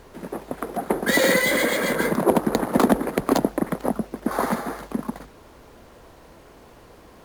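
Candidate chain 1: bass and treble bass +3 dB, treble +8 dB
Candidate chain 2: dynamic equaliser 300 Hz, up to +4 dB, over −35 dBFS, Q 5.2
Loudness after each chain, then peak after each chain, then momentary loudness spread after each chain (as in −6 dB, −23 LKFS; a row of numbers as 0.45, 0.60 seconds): −21.0, −22.0 LKFS; −2.5, −4.0 dBFS; 15, 13 LU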